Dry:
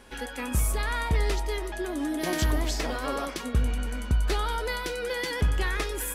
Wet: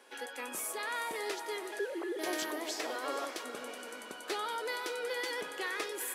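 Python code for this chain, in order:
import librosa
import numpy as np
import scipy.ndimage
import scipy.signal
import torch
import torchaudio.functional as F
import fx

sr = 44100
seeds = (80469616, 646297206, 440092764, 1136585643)

p1 = fx.sine_speech(x, sr, at=(1.79, 2.19))
p2 = scipy.signal.sosfilt(scipy.signal.butter(4, 330.0, 'highpass', fs=sr, output='sos'), p1)
p3 = p2 + fx.echo_diffused(p2, sr, ms=464, feedback_pct=45, wet_db=-12.0, dry=0)
y = F.gain(torch.from_numpy(p3), -5.5).numpy()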